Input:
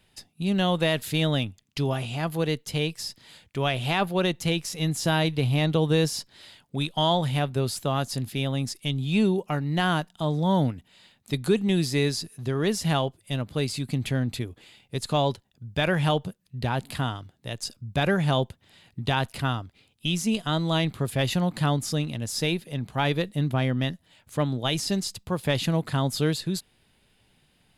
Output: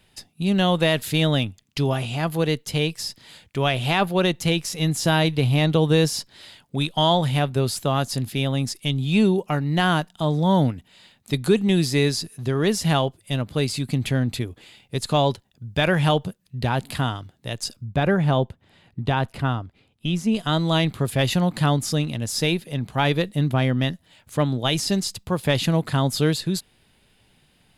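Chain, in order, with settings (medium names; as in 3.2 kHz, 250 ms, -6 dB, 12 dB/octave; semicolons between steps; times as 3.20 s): 17.85–20.36 s: treble shelf 2.7 kHz -12 dB; trim +4 dB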